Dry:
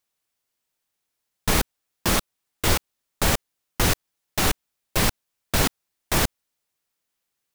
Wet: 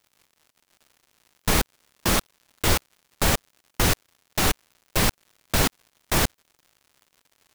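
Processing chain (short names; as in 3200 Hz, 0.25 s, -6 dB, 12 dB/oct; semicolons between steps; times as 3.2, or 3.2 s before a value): crackle 180/s -44 dBFS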